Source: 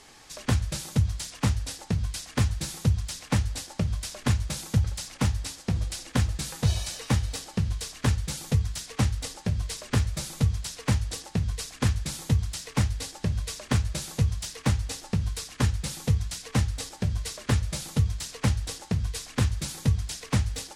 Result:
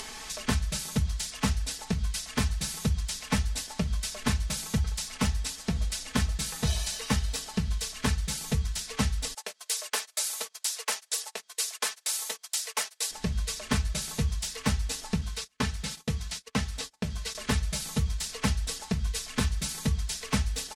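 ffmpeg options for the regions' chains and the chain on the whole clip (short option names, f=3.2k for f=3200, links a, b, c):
-filter_complex "[0:a]asettb=1/sr,asplit=3[a][b][c];[a]atrim=end=9.344[d];[b]atrim=start=9.34:end=13.11,asetpts=PTS-STARTPTS,afade=t=in:d=0.004:c=qsin,afade=t=out:st=3.766:d=0.004:c=qsin,highpass=f=470:w=0.5412,highpass=f=470:w=1.3066,highshelf=f=7.1k:g=9.5,agate=range=-25dB:threshold=-43dB:ratio=16:release=100:detection=peak[e];[c]atrim=start=13.106[f];[d][e]acrossfade=d=0.004:c1=hsin:c2=qsin[g];[g][f]acrossfade=d=0.004:c1=qsin:c2=hsin,asettb=1/sr,asplit=3[h][i][j];[h]atrim=end=15.214[k];[i]atrim=start=15.21:end=17.35,asetpts=PTS-STARTPTS,afade=t=in:d=0.004:c=qsin,afade=t=out:st=2.136:d=0.004:c=qsin,acrossover=split=6100[l][m];[m]acompressor=threshold=-44dB:ratio=4:attack=1:release=60[n];[l][n]amix=inputs=2:normalize=0,agate=range=-33dB:threshold=-40dB:ratio=16:release=100:detection=peak,highpass=f=97:p=1[o];[j]atrim=start=17.346[p];[k][o]acrossfade=d=0.004:c1=hsin:c2=qsin[q];[q][p]acrossfade=d=0.004:c1=qsin:c2=hsin,equalizer=f=320:w=0.4:g=-4.5,aecho=1:1:4.6:0.74,acompressor=mode=upward:threshold=-31dB:ratio=2.5"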